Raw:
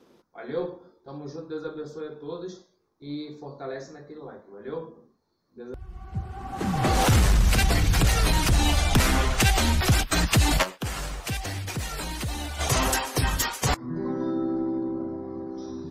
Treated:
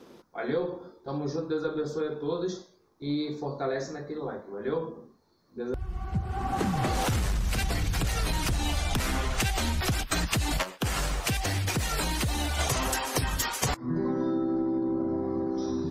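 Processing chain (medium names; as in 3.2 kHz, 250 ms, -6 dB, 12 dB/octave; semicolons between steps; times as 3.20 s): compression 10:1, threshold -31 dBFS, peak gain reduction 16 dB; trim +6.5 dB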